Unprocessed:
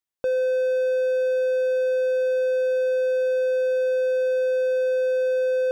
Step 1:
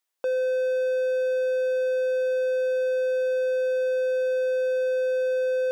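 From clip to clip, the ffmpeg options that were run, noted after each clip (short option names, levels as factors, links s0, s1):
-af "highpass=420,alimiter=level_in=1.88:limit=0.0631:level=0:latency=1,volume=0.531,volume=2.37"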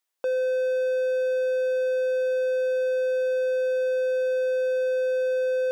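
-af anull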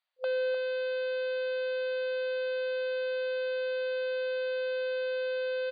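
-filter_complex "[0:a]aeval=exprs='0.0841*(cos(1*acos(clip(val(0)/0.0841,-1,1)))-cos(1*PI/2))+0.00596*(cos(2*acos(clip(val(0)/0.0841,-1,1)))-cos(2*PI/2))+0.00211*(cos(5*acos(clip(val(0)/0.0841,-1,1)))-cos(5*PI/2))+0.00531*(cos(6*acos(clip(val(0)/0.0841,-1,1)))-cos(6*PI/2))':c=same,asplit=2[s0][s1];[s1]adelay=303.2,volume=0.316,highshelf=f=4000:g=-6.82[s2];[s0][s2]amix=inputs=2:normalize=0,afftfilt=real='re*between(b*sr/4096,510,4800)':imag='im*between(b*sr/4096,510,4800)':win_size=4096:overlap=0.75,volume=0.891"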